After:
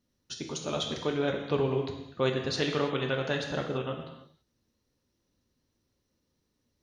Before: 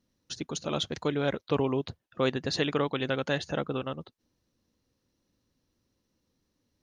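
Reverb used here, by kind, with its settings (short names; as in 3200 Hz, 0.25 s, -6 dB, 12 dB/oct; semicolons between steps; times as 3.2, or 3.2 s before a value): non-linear reverb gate 0.36 s falling, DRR 2 dB; gain -2.5 dB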